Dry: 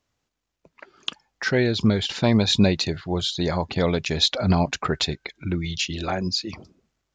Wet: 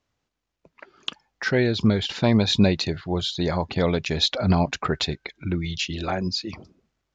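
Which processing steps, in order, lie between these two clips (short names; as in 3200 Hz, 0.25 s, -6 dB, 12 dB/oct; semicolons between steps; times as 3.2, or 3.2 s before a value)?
air absorption 57 m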